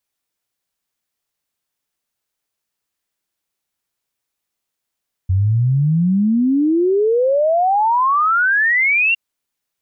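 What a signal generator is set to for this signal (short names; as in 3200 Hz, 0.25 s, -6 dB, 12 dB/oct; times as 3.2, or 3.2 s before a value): log sweep 90 Hz -> 2800 Hz 3.86 s -12 dBFS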